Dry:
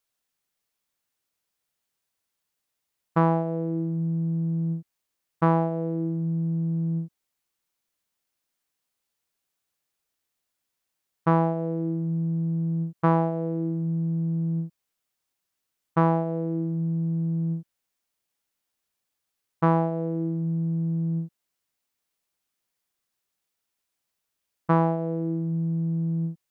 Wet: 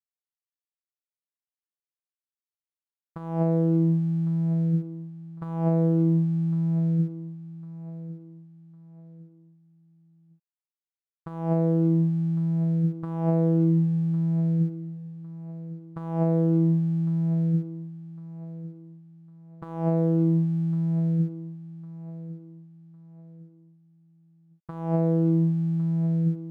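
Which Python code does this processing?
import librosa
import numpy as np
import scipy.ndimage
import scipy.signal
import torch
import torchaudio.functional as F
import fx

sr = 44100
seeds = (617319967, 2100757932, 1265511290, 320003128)

p1 = fx.low_shelf(x, sr, hz=170.0, db=10.0)
p2 = fx.over_compress(p1, sr, threshold_db=-23.0, ratio=-0.5)
p3 = np.sign(p2) * np.maximum(np.abs(p2) - 10.0 ** (-54.5 / 20.0), 0.0)
y = p3 + fx.echo_feedback(p3, sr, ms=1105, feedback_pct=35, wet_db=-15.5, dry=0)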